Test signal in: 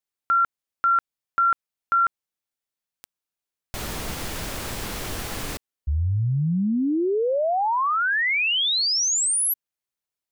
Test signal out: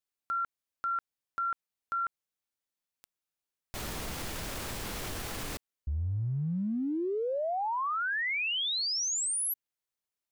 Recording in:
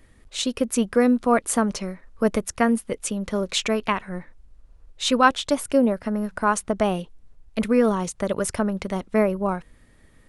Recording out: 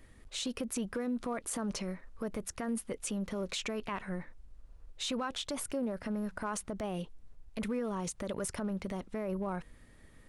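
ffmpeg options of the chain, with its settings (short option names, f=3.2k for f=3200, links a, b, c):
-af "acompressor=threshold=-26dB:ratio=10:attack=0.1:release=66:knee=6:detection=peak,volume=-3dB"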